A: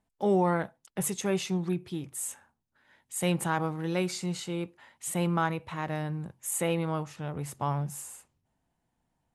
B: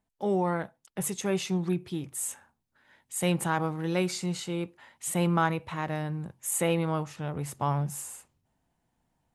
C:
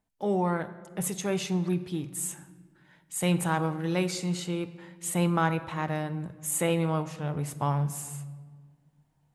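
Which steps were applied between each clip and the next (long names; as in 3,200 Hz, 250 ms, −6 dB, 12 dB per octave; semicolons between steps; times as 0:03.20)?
speech leveller 2 s
rectangular room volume 1,800 cubic metres, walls mixed, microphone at 0.48 metres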